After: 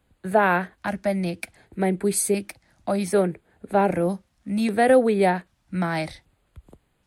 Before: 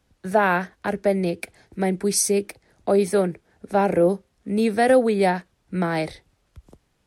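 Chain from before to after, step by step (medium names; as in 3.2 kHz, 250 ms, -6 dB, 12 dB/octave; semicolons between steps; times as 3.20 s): LFO notch square 0.64 Hz 430–5600 Hz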